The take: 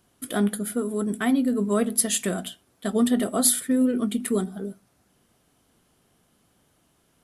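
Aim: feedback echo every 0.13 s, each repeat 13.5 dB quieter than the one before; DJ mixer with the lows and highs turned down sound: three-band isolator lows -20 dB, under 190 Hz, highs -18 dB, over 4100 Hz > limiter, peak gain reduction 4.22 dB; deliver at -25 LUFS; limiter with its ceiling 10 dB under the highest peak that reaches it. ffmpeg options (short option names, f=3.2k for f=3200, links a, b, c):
-filter_complex "[0:a]alimiter=limit=-16.5dB:level=0:latency=1,acrossover=split=190 4100:gain=0.1 1 0.126[a][b][c];[a][b][c]amix=inputs=3:normalize=0,aecho=1:1:130|260:0.211|0.0444,volume=5.5dB,alimiter=limit=-15dB:level=0:latency=1"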